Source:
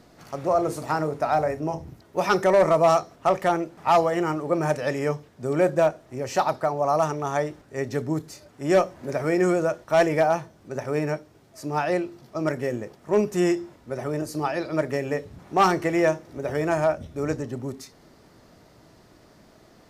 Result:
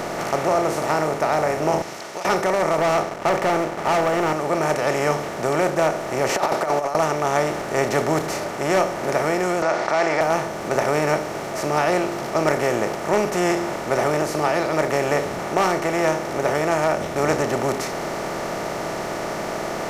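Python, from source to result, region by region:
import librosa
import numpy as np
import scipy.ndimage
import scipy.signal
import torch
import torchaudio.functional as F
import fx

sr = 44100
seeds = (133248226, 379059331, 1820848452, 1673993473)

y = fx.chain(x, sr, fx.bandpass_q(hz=5100.0, q=2.0),
    fx.over_compress(threshold_db=-51.0, ratio=-1.0), at=(1.82, 2.25))
y = fx.chain(y, sr, fx.lowpass(hz=2100.0, slope=6),
    fx.leveller(passes=2), at=(2.78, 4.33))
y = fx.chain(y, sr, fx.highpass(hz=310.0, slope=12),
    fx.over_compress(threshold_db=-29.0, ratio=-0.5), at=(6.29, 6.95))
y = fx.chain(y, sr, fx.cabinet(low_hz=420.0, low_slope=12, high_hz=5200.0, hz=(480.0, 750.0, 1400.0, 2100.0, 3000.0, 4600.0), db=(-7, 7, 5, 7, -7, 8)),
    fx.env_flatten(amount_pct=50), at=(9.62, 10.21))
y = fx.bin_compress(y, sr, power=0.4)
y = fx.high_shelf(y, sr, hz=6700.0, db=6.0)
y = fx.rider(y, sr, range_db=3, speed_s=0.5)
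y = F.gain(torch.from_numpy(y), -4.5).numpy()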